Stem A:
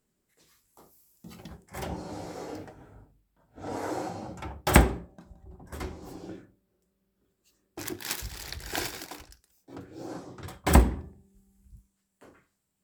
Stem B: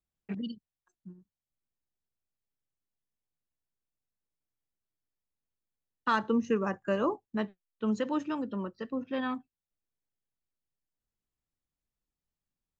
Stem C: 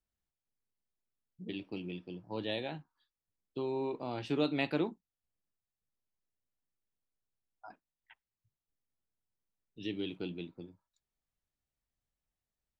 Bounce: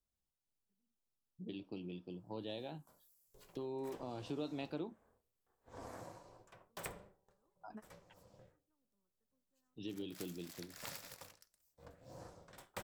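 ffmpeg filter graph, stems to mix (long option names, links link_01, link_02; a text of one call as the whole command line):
ffmpeg -i stem1.wav -i stem2.wav -i stem3.wav -filter_complex "[0:a]highpass=frequency=220:width=0.5412,highpass=frequency=220:width=1.3066,highshelf=frequency=6900:gain=5,aeval=exprs='val(0)*sin(2*PI*200*n/s)':channel_layout=same,adelay=2100,volume=-3.5dB,afade=type=out:start_time=5.79:duration=0.35:silence=0.446684,afade=type=in:start_time=10.12:duration=0.38:silence=0.446684[link_01];[1:a]lowpass=1800,adelay=400,volume=-17dB[link_02];[2:a]equalizer=frequency=2000:width_type=o:width=0.76:gain=-11.5,volume=-1dB,asplit=2[link_03][link_04];[link_04]apad=whole_len=581785[link_05];[link_02][link_05]sidechaingate=range=-36dB:threshold=-60dB:ratio=16:detection=peak[link_06];[link_01][link_06][link_03]amix=inputs=3:normalize=0,acompressor=threshold=-45dB:ratio=2" out.wav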